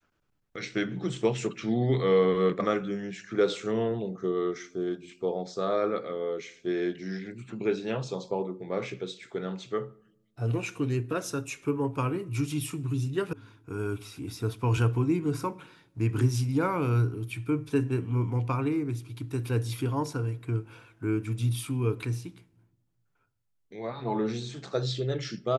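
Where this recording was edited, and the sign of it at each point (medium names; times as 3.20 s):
13.33 s: sound stops dead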